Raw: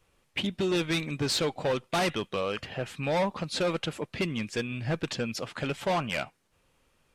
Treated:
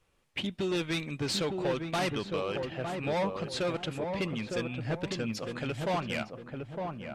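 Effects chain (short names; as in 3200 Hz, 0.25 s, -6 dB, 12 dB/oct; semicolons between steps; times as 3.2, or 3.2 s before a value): high shelf 11000 Hz -4 dB; on a send: darkening echo 0.908 s, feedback 41%, low-pass 960 Hz, level -3.5 dB; on the sum: gain -3.5 dB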